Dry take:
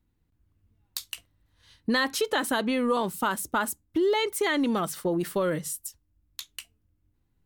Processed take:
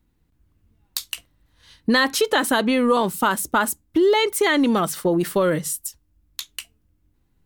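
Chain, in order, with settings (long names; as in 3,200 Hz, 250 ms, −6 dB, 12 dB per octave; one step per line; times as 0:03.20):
parametric band 100 Hz −7 dB 0.29 octaves
level +7 dB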